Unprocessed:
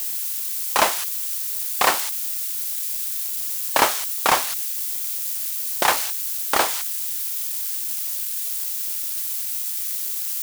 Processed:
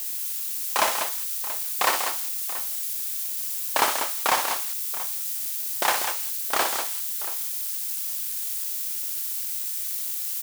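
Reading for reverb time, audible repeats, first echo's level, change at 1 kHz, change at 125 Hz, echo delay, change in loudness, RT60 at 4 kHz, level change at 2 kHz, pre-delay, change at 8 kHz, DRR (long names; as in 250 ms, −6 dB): no reverb audible, 3, −7.0 dB, −3.5 dB, can't be measured, 60 ms, −3.0 dB, no reverb audible, −3.0 dB, no reverb audible, −3.0 dB, no reverb audible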